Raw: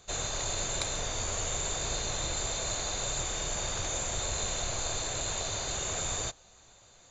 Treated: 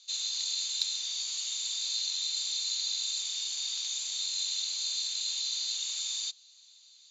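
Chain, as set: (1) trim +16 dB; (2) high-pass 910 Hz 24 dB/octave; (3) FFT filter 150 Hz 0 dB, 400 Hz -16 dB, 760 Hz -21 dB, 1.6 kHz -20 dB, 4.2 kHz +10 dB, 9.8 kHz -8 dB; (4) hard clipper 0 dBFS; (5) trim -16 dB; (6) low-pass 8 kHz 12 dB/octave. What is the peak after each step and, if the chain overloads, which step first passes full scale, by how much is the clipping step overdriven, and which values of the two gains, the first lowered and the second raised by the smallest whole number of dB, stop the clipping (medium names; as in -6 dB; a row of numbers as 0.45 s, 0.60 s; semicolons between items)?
+2.0 dBFS, +0.5 dBFS, +4.0 dBFS, 0.0 dBFS, -16.0 dBFS, -15.0 dBFS; step 1, 4.0 dB; step 1 +12 dB, step 5 -12 dB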